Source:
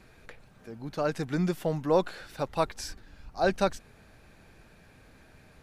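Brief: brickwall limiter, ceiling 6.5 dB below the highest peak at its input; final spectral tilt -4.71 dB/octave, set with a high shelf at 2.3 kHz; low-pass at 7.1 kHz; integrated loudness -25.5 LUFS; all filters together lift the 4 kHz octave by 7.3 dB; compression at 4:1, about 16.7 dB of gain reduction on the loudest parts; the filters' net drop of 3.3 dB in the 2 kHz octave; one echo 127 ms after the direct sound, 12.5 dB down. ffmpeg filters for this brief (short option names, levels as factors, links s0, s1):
-af "lowpass=7100,equalizer=f=2000:t=o:g=-9,highshelf=f=2300:g=5,equalizer=f=4000:t=o:g=6.5,acompressor=threshold=0.00891:ratio=4,alimiter=level_in=2.99:limit=0.0631:level=0:latency=1,volume=0.335,aecho=1:1:127:0.237,volume=11.9"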